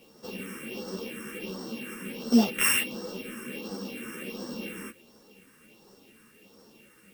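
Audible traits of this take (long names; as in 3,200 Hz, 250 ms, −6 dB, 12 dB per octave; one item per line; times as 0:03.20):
a buzz of ramps at a fixed pitch in blocks of 16 samples
phaser sweep stages 4, 1.4 Hz, lowest notch 680–2,400 Hz
a quantiser's noise floor 12 bits, dither triangular
a shimmering, thickened sound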